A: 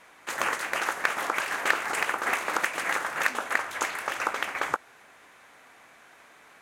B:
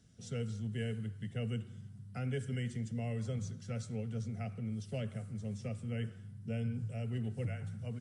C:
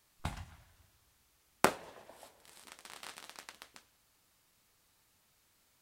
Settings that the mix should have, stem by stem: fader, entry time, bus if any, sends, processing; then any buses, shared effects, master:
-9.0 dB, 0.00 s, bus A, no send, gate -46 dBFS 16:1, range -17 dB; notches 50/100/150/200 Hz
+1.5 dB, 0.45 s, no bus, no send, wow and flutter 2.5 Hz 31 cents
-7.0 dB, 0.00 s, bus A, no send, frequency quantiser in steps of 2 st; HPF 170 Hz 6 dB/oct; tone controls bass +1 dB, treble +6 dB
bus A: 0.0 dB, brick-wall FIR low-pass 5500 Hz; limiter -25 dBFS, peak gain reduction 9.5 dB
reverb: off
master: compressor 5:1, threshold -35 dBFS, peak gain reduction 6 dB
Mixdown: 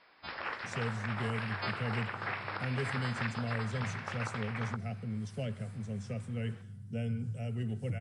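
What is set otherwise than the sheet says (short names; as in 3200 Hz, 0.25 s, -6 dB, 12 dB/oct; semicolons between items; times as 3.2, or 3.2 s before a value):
stem A: missing gate -46 dBFS 16:1, range -17 dB; master: missing compressor 5:1, threshold -35 dBFS, peak gain reduction 6 dB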